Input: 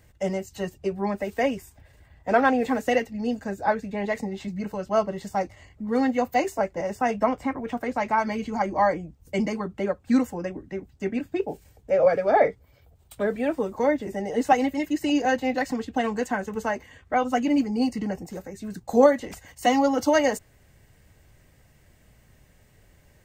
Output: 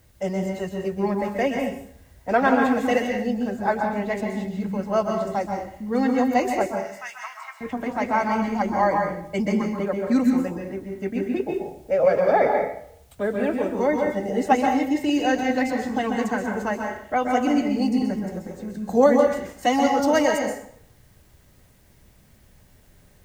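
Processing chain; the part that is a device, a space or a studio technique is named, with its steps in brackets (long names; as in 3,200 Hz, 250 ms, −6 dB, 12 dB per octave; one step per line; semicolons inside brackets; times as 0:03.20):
plain cassette with noise reduction switched in (one half of a high-frequency compander decoder only; tape wow and flutter 12 cents; white noise bed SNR 39 dB)
0:06.66–0:07.61: Bessel high-pass filter 1,800 Hz, order 6
dense smooth reverb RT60 0.64 s, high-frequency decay 0.8×, pre-delay 115 ms, DRR 2 dB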